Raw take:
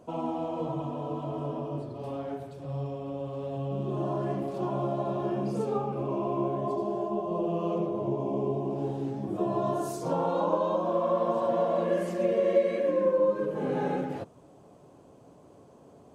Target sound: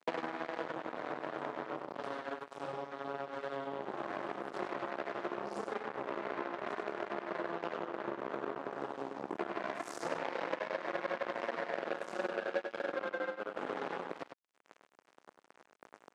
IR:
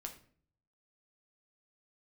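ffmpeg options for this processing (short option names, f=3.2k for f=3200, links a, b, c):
-af "equalizer=f=1.3k:t=o:w=0.71:g=-5,acompressor=threshold=-46dB:ratio=10,acrusher=bits=6:mix=0:aa=0.5,highpass=310,lowpass=7.5k,aecho=1:1:99:0.422,volume=13dB"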